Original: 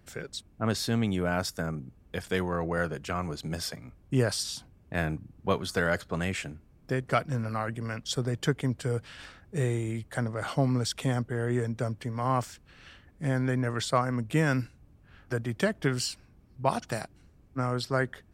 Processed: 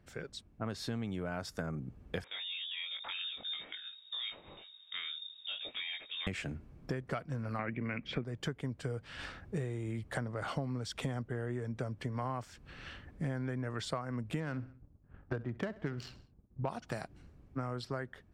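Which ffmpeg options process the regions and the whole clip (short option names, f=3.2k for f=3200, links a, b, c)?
-filter_complex "[0:a]asettb=1/sr,asplit=3[a][b][c];[a]atrim=end=2.244[d];[b]atrim=start=2.24:end=6.27,asetpts=PTS-STARTPTS,afade=t=in:d=0.004:c=qsin,afade=t=out:st=4.026:d=0.004:c=qsin,acompressor=threshold=-37dB:ratio=4:attack=3.2:release=140:knee=1:detection=peak,flanger=delay=19:depth=3.3:speed=1.5,lowpass=f=3.2k:t=q:w=0.5098,lowpass=f=3.2k:t=q:w=0.6013,lowpass=f=3.2k:t=q:w=0.9,lowpass=f=3.2k:t=q:w=2.563,afreqshift=-3800[e];[c]atrim=start=6.266[f];[d][e]acrossfade=d=0.004:c1=hsin:c2=qsin[g];[g][f]acrossfade=d=0.004:c1=qsin:c2=hsin,asettb=1/sr,asplit=3[h][i][j];[h]atrim=end=7.594[k];[i]atrim=start=7.59:end=8.24,asetpts=PTS-STARTPTS,afade=t=in:d=0.004:c=qsin,afade=t=out:st=0.646:d=0.004:c=qsin,deesser=0.7,lowpass=f=2.3k:t=q:w=8.7,equalizer=f=260:t=o:w=1.7:g=9.5[l];[j]atrim=start=8.236[m];[k][l]acrossfade=d=0.004:c1=hsin:c2=qsin[n];[n][m]acrossfade=d=0.004:c1=qsin:c2=hsin,asettb=1/sr,asplit=3[o][p][q];[o]atrim=end=14.404[r];[p]atrim=start=14.4:end=16.69,asetpts=PTS-STARTPTS,afade=t=in:d=0.004:c=qsin,afade=t=out:st=2.286:d=0.004:c=qsin,agate=range=-33dB:threshold=-50dB:ratio=3:release=100:detection=peak,adynamicsmooth=sensitivity=3.5:basefreq=1.1k,aecho=1:1:65|130|195:0.1|0.039|0.0152,atrim=end_sample=100989[s];[q]atrim=start=16.686[t];[r][s]acrossfade=d=0.004:c1=hsin:c2=qsin[u];[u][t]acrossfade=d=0.004:c1=qsin:c2=hsin,dynaudnorm=f=680:g=5:m=10dB,lowpass=f=3.6k:p=1,acompressor=threshold=-29dB:ratio=12,volume=-4.5dB"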